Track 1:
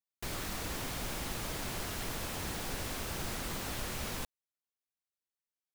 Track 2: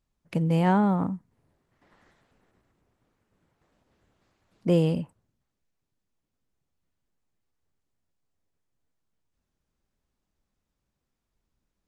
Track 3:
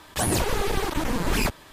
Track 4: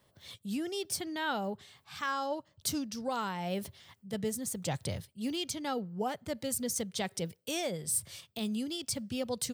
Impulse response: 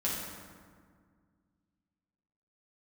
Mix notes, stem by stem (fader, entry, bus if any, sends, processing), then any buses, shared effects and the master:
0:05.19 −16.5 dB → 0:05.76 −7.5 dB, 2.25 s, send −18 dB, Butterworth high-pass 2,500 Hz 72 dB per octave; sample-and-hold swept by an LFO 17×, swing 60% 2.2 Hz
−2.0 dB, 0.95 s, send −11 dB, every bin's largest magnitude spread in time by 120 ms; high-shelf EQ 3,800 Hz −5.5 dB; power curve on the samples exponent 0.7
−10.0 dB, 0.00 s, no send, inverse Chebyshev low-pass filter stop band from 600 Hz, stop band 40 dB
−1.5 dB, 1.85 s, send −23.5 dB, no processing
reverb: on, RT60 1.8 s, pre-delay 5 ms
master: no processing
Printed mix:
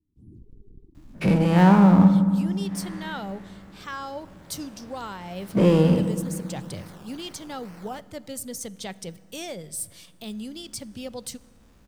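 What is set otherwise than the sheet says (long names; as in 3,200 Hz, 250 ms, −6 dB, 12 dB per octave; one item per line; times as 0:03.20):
stem 1: entry 2.25 s → 3.75 s
stem 3 −10.0 dB → −20.5 dB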